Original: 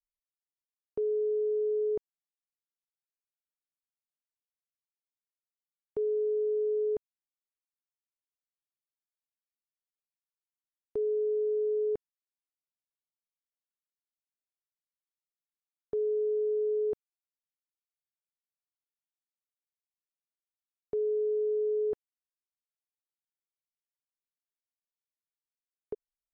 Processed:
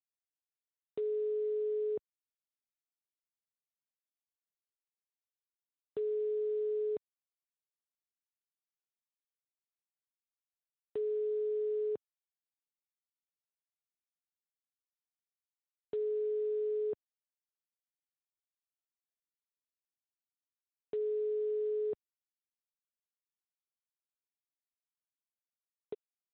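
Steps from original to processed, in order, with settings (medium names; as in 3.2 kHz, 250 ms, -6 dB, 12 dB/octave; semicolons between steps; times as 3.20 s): high-pass 110 Hz 12 dB/octave; trim -4.5 dB; G.726 32 kbps 8 kHz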